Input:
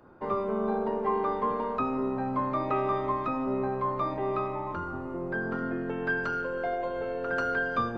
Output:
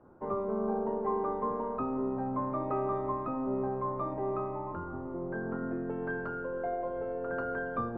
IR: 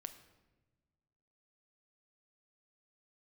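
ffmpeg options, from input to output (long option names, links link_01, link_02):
-af "lowpass=1100,volume=-2.5dB"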